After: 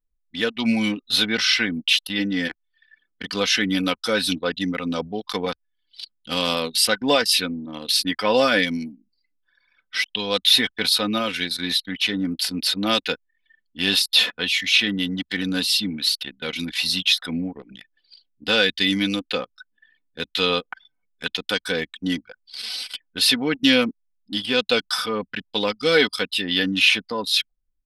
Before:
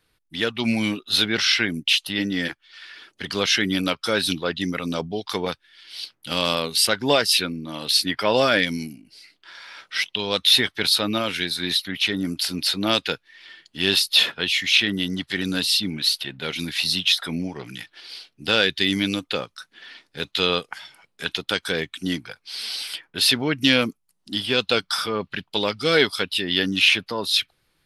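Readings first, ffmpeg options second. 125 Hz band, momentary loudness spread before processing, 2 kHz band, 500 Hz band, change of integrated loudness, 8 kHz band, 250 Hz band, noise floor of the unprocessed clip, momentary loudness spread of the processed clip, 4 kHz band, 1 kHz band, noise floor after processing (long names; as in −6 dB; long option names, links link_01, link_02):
−2.0 dB, 16 LU, +0.5 dB, +0.5 dB, +0.5 dB, 0.0 dB, +1.5 dB, −71 dBFS, 12 LU, 0.0 dB, 0.0 dB, −73 dBFS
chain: -af "aecho=1:1:4:0.55,anlmdn=39.8,volume=-1dB"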